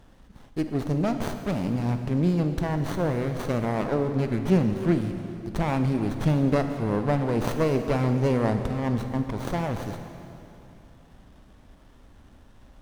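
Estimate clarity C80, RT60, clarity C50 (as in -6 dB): 8.0 dB, 2.8 s, 7.0 dB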